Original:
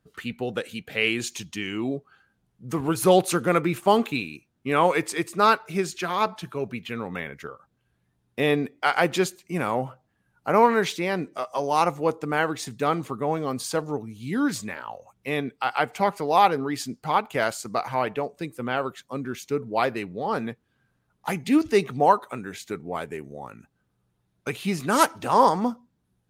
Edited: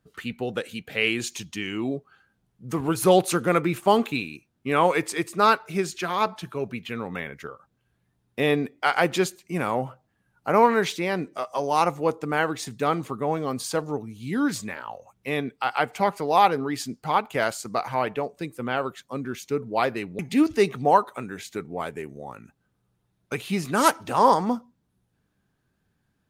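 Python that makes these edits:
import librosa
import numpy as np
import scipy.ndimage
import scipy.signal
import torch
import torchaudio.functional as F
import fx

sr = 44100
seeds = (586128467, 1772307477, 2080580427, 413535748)

y = fx.edit(x, sr, fx.cut(start_s=20.19, length_s=1.15), tone=tone)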